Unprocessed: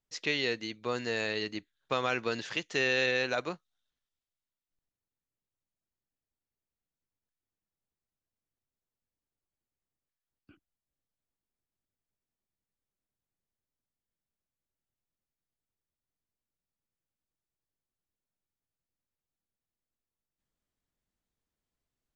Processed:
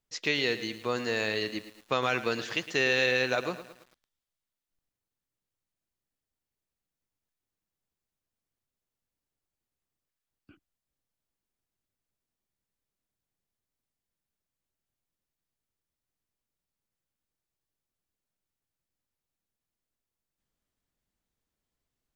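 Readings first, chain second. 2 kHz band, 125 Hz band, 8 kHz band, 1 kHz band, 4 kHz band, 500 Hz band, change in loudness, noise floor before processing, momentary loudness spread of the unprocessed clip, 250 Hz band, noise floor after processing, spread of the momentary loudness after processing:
+2.5 dB, +3.0 dB, n/a, +3.0 dB, +2.5 dB, +2.5 dB, +2.5 dB, under -85 dBFS, 10 LU, +2.5 dB, under -85 dBFS, 10 LU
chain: lo-fi delay 0.11 s, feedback 55%, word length 8-bit, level -13 dB; gain +2.5 dB

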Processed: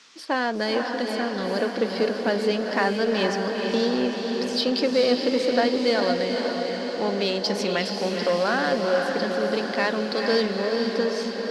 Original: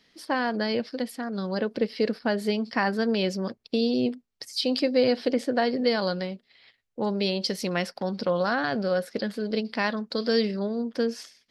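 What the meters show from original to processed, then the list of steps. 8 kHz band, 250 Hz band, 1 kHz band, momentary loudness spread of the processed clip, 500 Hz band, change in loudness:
+4.5 dB, +1.0 dB, +4.0 dB, 5 LU, +4.0 dB, +3.0 dB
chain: in parallel at -3.5 dB: overloaded stage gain 29 dB; on the sum: three-band isolator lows -13 dB, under 220 Hz, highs -14 dB, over 8000 Hz; band noise 950–6200 Hz -54 dBFS; diffused feedback echo 0.463 s, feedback 67%, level -4.5 dB

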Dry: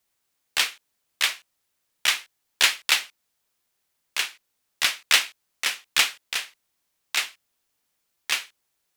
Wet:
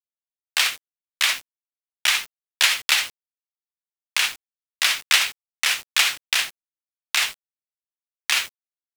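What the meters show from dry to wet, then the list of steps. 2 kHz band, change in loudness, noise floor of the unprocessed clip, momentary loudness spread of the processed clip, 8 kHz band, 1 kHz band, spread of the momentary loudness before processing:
+3.5 dB, +3.0 dB, -76 dBFS, 10 LU, +3.5 dB, +3.0 dB, 12 LU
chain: HPF 610 Hz 12 dB/oct; in parallel at +2 dB: negative-ratio compressor -30 dBFS, ratio -1; on the sum: bit-crush 6-bit

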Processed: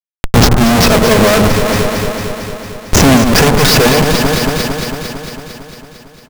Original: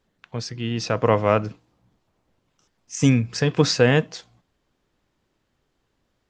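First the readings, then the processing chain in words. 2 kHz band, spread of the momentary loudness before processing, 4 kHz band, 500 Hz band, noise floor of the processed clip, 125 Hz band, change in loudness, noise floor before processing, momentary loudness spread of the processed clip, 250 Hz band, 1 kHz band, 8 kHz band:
+15.0 dB, 17 LU, +16.0 dB, +11.0 dB, -41 dBFS, +11.0 dB, +10.5 dB, -73 dBFS, 16 LU, +13.5 dB, +14.5 dB, +17.5 dB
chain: LPF 3600 Hz 6 dB/oct; comb 4.7 ms, depth 61%; tube stage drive 21 dB, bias 0.7; in parallel at -9 dB: sample gate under -35 dBFS; on the sum: bell 74 Hz +12.5 dB 0.39 oct; Schmitt trigger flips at -36 dBFS; on a send: echo with dull and thin repeats by turns 0.113 s, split 1400 Hz, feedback 82%, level -6 dB; on the sum: maximiser +26 dB; gain -1 dB

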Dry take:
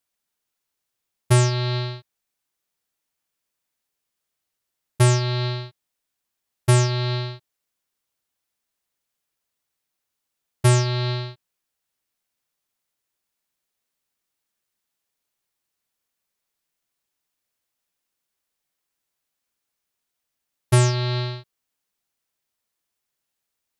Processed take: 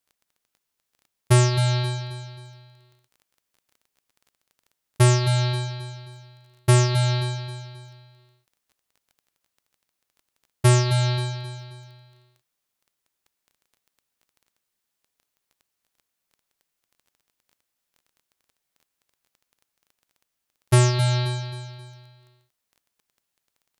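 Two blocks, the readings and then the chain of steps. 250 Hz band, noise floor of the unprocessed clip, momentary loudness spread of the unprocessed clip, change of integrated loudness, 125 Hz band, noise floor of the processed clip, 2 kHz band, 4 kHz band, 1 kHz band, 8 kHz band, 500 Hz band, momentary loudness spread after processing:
n/a, -82 dBFS, 14 LU, 0.0 dB, +1.0 dB, -81 dBFS, +0.5 dB, +0.5 dB, +0.5 dB, +0.5 dB, 0.0 dB, 19 LU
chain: on a send: feedback echo 0.266 s, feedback 42%, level -10 dB; on the sum: crackle 14/s -44 dBFS

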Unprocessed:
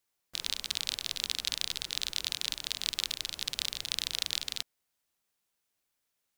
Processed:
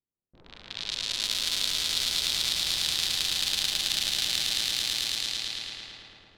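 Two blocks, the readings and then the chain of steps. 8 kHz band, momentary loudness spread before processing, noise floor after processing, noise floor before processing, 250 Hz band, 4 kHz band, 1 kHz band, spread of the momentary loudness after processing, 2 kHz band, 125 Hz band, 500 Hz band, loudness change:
+7.0 dB, 4 LU, -65 dBFS, -82 dBFS, +8.0 dB, +7.5 dB, +7.5 dB, 10 LU, +7.0 dB, +7.5 dB, +7.5 dB, +7.0 dB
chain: swelling echo 0.109 s, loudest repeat 5, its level -3.5 dB; low-pass opened by the level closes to 330 Hz, open at -25 dBFS; non-linear reverb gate 0.4 s rising, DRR 9 dB

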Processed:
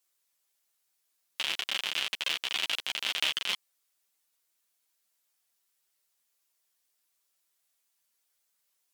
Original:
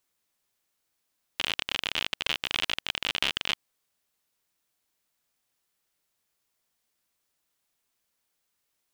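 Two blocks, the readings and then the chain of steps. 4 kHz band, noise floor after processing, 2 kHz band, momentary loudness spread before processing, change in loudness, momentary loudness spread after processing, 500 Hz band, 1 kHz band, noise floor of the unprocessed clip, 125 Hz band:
-1.0 dB, -77 dBFS, -2.0 dB, 5 LU, -1.0 dB, 5 LU, -5.0 dB, -3.5 dB, -79 dBFS, under -10 dB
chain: HPF 460 Hz 6 dB/oct; bell 15000 Hz +6.5 dB 2 oct; chorus voices 6, 0.48 Hz, delay 10 ms, depth 4.9 ms

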